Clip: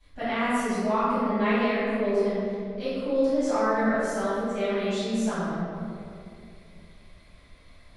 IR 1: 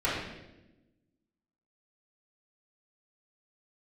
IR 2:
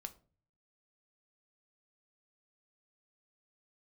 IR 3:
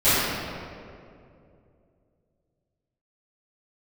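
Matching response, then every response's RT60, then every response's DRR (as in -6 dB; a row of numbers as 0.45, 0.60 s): 3; 1.0, 0.40, 2.5 s; -11.5, 8.0, -19.5 dB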